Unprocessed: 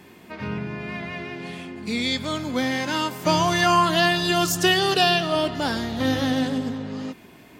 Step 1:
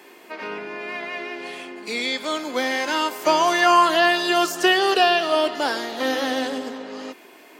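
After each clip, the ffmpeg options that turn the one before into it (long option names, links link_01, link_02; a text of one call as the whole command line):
ffmpeg -i in.wav -filter_complex "[0:a]bandreject=frequency=3600:width=20,acrossover=split=2800[link_01][link_02];[link_02]acompressor=threshold=-31dB:ratio=4:attack=1:release=60[link_03];[link_01][link_03]amix=inputs=2:normalize=0,highpass=frequency=330:width=0.5412,highpass=frequency=330:width=1.3066,volume=3.5dB" out.wav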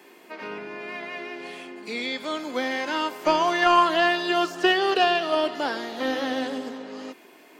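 ffmpeg -i in.wav -filter_complex "[0:a]acrossover=split=4800[link_01][link_02];[link_02]acompressor=threshold=-45dB:ratio=4:attack=1:release=60[link_03];[link_01][link_03]amix=inputs=2:normalize=0,lowshelf=frequency=170:gain=8.5,aeval=exprs='0.631*(cos(1*acos(clip(val(0)/0.631,-1,1)))-cos(1*PI/2))+0.0708*(cos(3*acos(clip(val(0)/0.631,-1,1)))-cos(3*PI/2))':channel_layout=same,volume=-1dB" out.wav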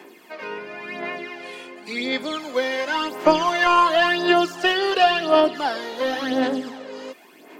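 ffmpeg -i in.wav -af "aphaser=in_gain=1:out_gain=1:delay=2.1:decay=0.56:speed=0.93:type=sinusoidal,volume=1dB" out.wav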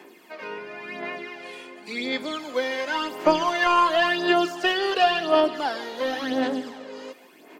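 ffmpeg -i in.wav -af "aecho=1:1:152:0.126,volume=-3dB" out.wav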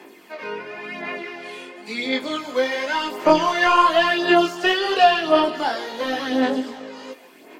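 ffmpeg -i in.wav -af "flanger=delay=18:depth=5.9:speed=1,volume=6.5dB" -ar 44100 -c:a ac3 -b:a 96k out.ac3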